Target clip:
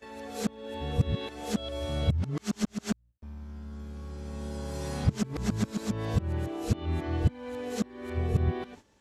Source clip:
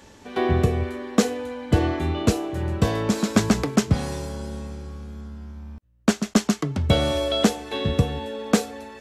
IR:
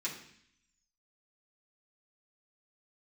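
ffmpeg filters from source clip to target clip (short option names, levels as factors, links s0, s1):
-filter_complex "[0:a]areverse,acrossover=split=180[s0][s1];[s1]acompressor=threshold=0.0355:ratio=10[s2];[s0][s2]amix=inputs=2:normalize=0,agate=range=0.224:threshold=0.00562:ratio=16:detection=peak,volume=0.631"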